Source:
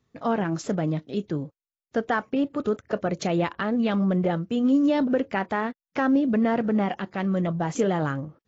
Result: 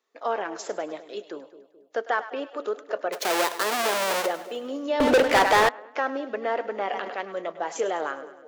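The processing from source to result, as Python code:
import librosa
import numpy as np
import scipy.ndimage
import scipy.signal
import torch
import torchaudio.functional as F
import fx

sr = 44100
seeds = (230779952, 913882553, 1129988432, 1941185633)

y = fx.halfwave_hold(x, sr, at=(3.12, 4.25), fade=0.02)
y = scipy.signal.sosfilt(scipy.signal.butter(4, 420.0, 'highpass', fs=sr, output='sos'), y)
y = fx.echo_split(y, sr, split_hz=600.0, low_ms=215, high_ms=102, feedback_pct=52, wet_db=-14.0)
y = fx.leveller(y, sr, passes=5, at=(5.0, 5.69))
y = fx.sustainer(y, sr, db_per_s=41.0, at=(6.77, 7.21))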